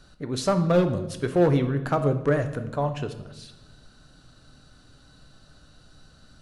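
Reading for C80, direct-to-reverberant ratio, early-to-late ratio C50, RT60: 14.0 dB, 7.5 dB, 11.0 dB, 1.0 s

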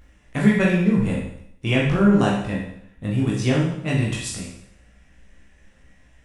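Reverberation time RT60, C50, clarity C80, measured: 0.70 s, 2.5 dB, 6.0 dB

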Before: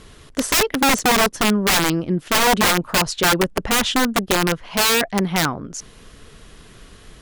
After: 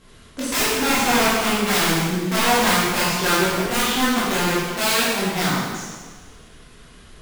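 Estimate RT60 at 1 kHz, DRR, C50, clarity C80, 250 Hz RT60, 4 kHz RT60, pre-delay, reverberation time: 1.5 s, -9.5 dB, -2.0 dB, 0.5 dB, 1.5 s, 1.4 s, 6 ms, 1.5 s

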